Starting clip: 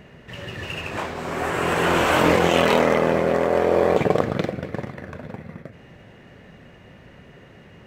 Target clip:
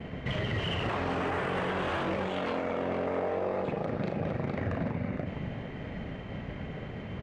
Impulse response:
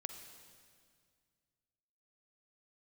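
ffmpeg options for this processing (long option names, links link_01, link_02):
-filter_complex "[0:a]agate=range=-33dB:threshold=-44dB:ratio=3:detection=peak,lowshelf=frequency=130:gain=7,asplit=2[link_01][link_02];[link_02]aecho=0:1:40|500:0.316|0.168[link_03];[link_01][link_03]amix=inputs=2:normalize=0,acompressor=threshold=-32dB:ratio=8,alimiter=level_in=4.5dB:limit=-24dB:level=0:latency=1:release=14,volume=-4.5dB,adynamicsmooth=sensitivity=1.5:basefreq=3600,asetrate=48000,aresample=44100,volume=6.5dB"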